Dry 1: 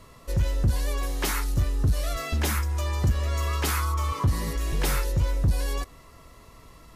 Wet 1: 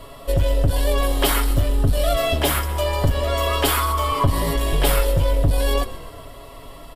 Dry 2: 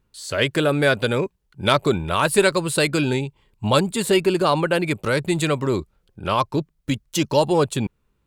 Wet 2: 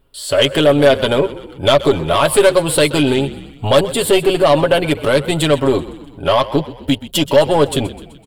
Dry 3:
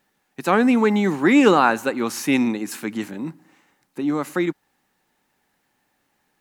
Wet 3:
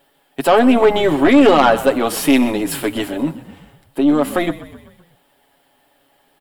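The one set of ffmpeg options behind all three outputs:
-filter_complex "[0:a]equalizer=frequency=2500:width=0.66:gain=-5.5,aeval=exprs='(tanh(2.82*val(0)+0.45)-tanh(0.45))/2.82':channel_layout=same,equalizer=frequency=125:width_type=o:width=0.33:gain=-11,equalizer=frequency=200:width_type=o:width=0.33:gain=-11,equalizer=frequency=630:width_type=o:width=0.33:gain=9,equalizer=frequency=3150:width_type=o:width=0.33:gain=11,equalizer=frequency=6300:width_type=o:width=0.33:gain=-12,asplit=2[link_01][link_02];[link_02]acompressor=threshold=-28dB:ratio=6,volume=-1dB[link_03];[link_01][link_03]amix=inputs=2:normalize=0,aecho=1:1:7.2:0.56,acontrast=88,asplit=6[link_04][link_05][link_06][link_07][link_08][link_09];[link_05]adelay=127,afreqshift=-36,volume=-16dB[link_10];[link_06]adelay=254,afreqshift=-72,volume=-21.2dB[link_11];[link_07]adelay=381,afreqshift=-108,volume=-26.4dB[link_12];[link_08]adelay=508,afreqshift=-144,volume=-31.6dB[link_13];[link_09]adelay=635,afreqshift=-180,volume=-36.8dB[link_14];[link_04][link_10][link_11][link_12][link_13][link_14]amix=inputs=6:normalize=0,volume=-1dB"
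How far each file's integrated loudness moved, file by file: +6.5, +6.5, +5.0 LU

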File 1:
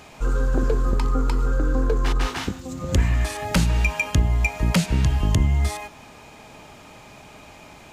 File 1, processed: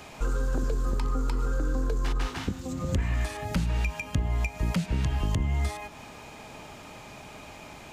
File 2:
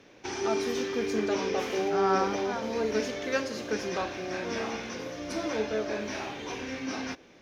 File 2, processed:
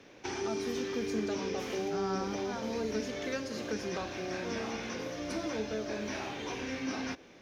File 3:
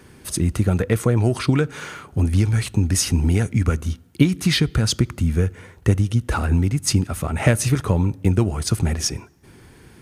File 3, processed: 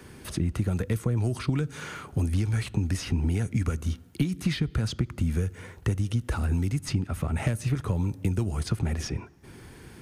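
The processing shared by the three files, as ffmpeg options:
-filter_complex "[0:a]aeval=exprs='0.891*(cos(1*acos(clip(val(0)/0.891,-1,1)))-cos(1*PI/2))+0.0794*(cos(4*acos(clip(val(0)/0.891,-1,1)))-cos(4*PI/2))+0.0316*(cos(6*acos(clip(val(0)/0.891,-1,1)))-cos(6*PI/2))':channel_layout=same,acrossover=split=260|3800[link_01][link_02][link_03];[link_01]acompressor=threshold=-25dB:ratio=4[link_04];[link_02]acompressor=threshold=-36dB:ratio=4[link_05];[link_03]acompressor=threshold=-47dB:ratio=4[link_06];[link_04][link_05][link_06]amix=inputs=3:normalize=0"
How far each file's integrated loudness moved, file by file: −7.0, −5.0, −8.0 LU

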